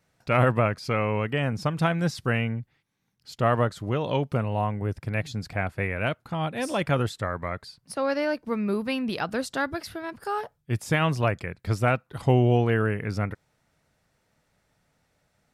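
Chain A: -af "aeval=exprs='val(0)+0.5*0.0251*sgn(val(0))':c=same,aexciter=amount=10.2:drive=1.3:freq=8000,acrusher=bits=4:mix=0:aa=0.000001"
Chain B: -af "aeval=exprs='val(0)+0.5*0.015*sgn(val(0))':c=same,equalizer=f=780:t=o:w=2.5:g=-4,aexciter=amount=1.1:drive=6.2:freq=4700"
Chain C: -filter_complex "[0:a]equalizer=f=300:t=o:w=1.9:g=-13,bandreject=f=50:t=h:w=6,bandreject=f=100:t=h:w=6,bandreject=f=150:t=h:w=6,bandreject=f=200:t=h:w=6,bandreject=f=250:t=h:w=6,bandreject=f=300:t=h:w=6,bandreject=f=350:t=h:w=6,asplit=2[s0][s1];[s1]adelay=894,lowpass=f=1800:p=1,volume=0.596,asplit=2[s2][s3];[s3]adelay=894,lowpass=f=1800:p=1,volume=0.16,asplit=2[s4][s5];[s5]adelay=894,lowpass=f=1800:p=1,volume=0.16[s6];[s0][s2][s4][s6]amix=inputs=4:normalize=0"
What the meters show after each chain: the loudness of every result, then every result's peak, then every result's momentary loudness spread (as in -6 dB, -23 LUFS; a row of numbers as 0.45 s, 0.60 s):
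-23.0 LUFS, -27.5 LUFS, -31.0 LUFS; -6.5 dBFS, -10.0 dBFS, -11.0 dBFS; 5 LU, 16 LU, 9 LU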